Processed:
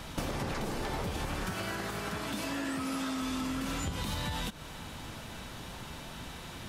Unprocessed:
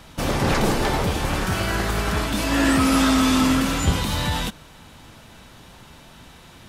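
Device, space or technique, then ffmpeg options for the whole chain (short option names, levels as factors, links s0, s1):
serial compression, leveller first: -filter_complex "[0:a]acompressor=threshold=0.0631:ratio=6,acompressor=threshold=0.02:ratio=6,asettb=1/sr,asplit=3[s0][s1][s2];[s0]atrim=end=1.504[s3];[s1]atrim=start=1.5:end=3.22,asetpts=PTS-STARTPTS,afade=t=in:d=0.004:c=qsin,afade=t=out:st=1.716:d=0.004:c=qsin,highpass=110[s4];[s2]atrim=start=3.216[s5];[s3][s4]acrossfade=d=0.004:c1=hsin:c2=qsin[s6];[s6][s5]acrossfade=d=0.004:c1=qsin:c2=hsin,volume=1.26"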